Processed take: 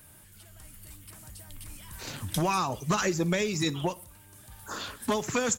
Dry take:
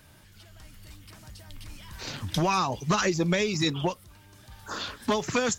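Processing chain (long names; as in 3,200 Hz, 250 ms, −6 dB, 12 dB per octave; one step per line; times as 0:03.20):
high shelf with overshoot 7,000 Hz +9.5 dB, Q 1.5
on a send: repeating echo 61 ms, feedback 45%, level −21 dB
on the sum: level −2 dB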